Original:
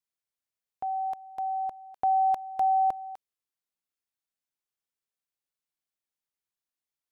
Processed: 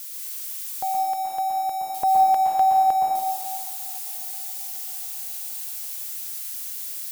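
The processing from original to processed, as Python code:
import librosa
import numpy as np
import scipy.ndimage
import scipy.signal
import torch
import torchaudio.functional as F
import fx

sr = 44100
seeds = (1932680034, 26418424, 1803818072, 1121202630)

y = x + 0.5 * 10.0 ** (-35.5 / 20.0) * np.diff(np.sign(x), prepend=np.sign(x[:1]))
y = fx.echo_heads(y, sr, ms=269, heads='first and second', feedback_pct=66, wet_db=-22.0)
y = fx.rev_plate(y, sr, seeds[0], rt60_s=1.6, hf_ratio=0.75, predelay_ms=105, drr_db=-2.0)
y = F.gain(torch.from_numpy(y), 5.0).numpy()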